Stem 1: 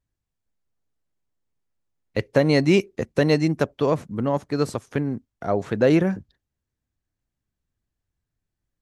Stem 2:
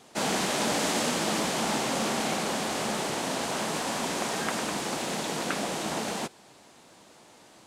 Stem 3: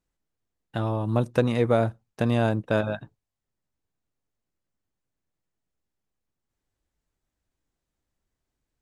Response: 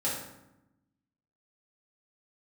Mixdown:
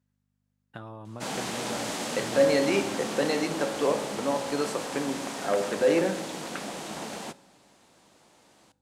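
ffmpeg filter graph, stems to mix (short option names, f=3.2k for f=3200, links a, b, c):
-filter_complex "[0:a]highpass=360,volume=-3.5dB,asplit=2[a][b];[b]volume=-12.5dB[c];[1:a]adelay=1050,volume=-6dB,asplit=2[d][e];[e]volume=-23.5dB[f];[2:a]equalizer=f=1.4k:w=1.3:g=6.5,acompressor=threshold=-28dB:ratio=6,aeval=exprs='val(0)+0.000891*(sin(2*PI*50*n/s)+sin(2*PI*2*50*n/s)/2+sin(2*PI*3*50*n/s)/3+sin(2*PI*4*50*n/s)/4+sin(2*PI*5*50*n/s)/5)':c=same,volume=-9dB[g];[a][g]amix=inputs=2:normalize=0,highpass=100,alimiter=limit=-19.5dB:level=0:latency=1,volume=0dB[h];[3:a]atrim=start_sample=2205[i];[c][f]amix=inputs=2:normalize=0[j];[j][i]afir=irnorm=-1:irlink=0[k];[d][h][k]amix=inputs=3:normalize=0"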